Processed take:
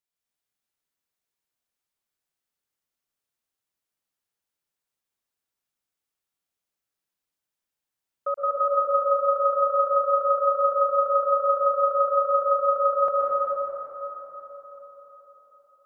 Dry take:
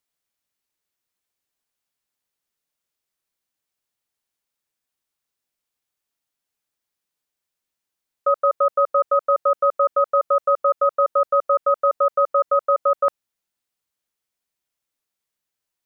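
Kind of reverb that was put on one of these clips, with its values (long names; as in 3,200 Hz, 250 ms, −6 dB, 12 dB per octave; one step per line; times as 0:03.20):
dense smooth reverb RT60 4.4 s, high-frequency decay 0.6×, pre-delay 105 ms, DRR −5 dB
level −9 dB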